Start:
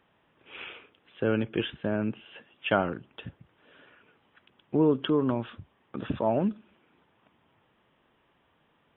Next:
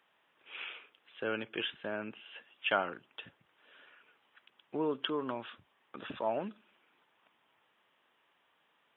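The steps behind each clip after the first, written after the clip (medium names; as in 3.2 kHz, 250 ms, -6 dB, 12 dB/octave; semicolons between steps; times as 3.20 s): high-pass 1.2 kHz 6 dB/octave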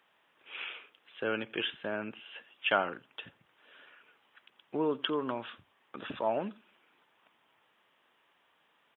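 delay 86 ms -23.5 dB; trim +2.5 dB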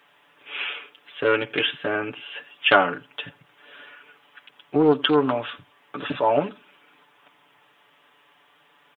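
comb 6.9 ms, depth 86%; loudspeaker Doppler distortion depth 0.19 ms; trim +9 dB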